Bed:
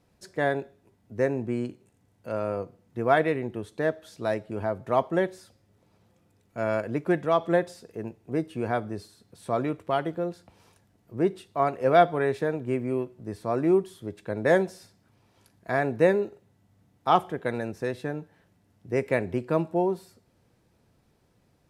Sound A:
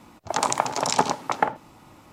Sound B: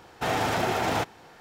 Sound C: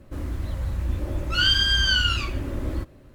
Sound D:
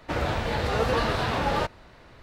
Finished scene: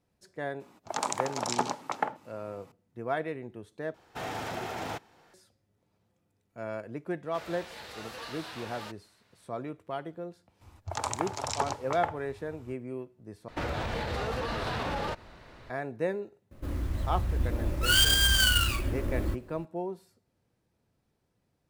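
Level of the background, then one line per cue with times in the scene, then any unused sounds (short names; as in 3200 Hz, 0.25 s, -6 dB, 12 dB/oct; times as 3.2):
bed -10 dB
0.6 add A -8 dB + HPF 120 Hz
3.94 replace with B -10 dB
7.25 add D -17 dB + tilt +3.5 dB/oct
10.61 add A -9.5 dB + resonant low shelf 130 Hz +12 dB, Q 3
13.48 replace with D -0.5 dB + limiter -23.5 dBFS
16.51 add C -2.5 dB + sample-rate reducer 12000 Hz, jitter 20%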